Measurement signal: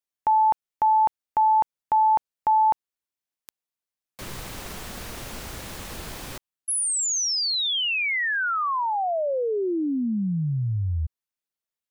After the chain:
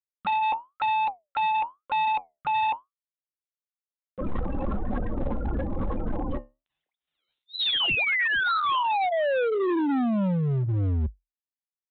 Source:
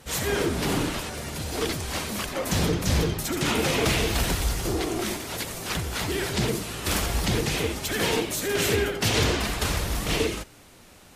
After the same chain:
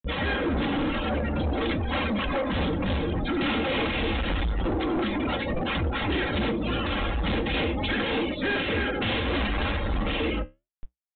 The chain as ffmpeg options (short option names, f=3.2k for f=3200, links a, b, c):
-filter_complex "[0:a]afftdn=nr=17:nf=-36,afftfilt=real='re*gte(hypot(re,im),0.0126)':imag='im*gte(hypot(re,im),0.0126)':win_size=1024:overlap=0.75,aecho=1:1:3.7:0.65,asplit=2[a][b];[b]acompressor=mode=upward:threshold=-22dB:ratio=4:attack=0.25:release=106:knee=2.83:detection=peak,volume=2.5dB[c];[a][c]amix=inputs=2:normalize=0,alimiter=limit=-13.5dB:level=0:latency=1:release=214,acontrast=45,tremolo=f=3.4:d=0.37,flanger=delay=8:depth=6.6:regen=-66:speed=1:shape=sinusoidal,aresample=8000,asoftclip=type=hard:threshold=-23dB,aresample=44100"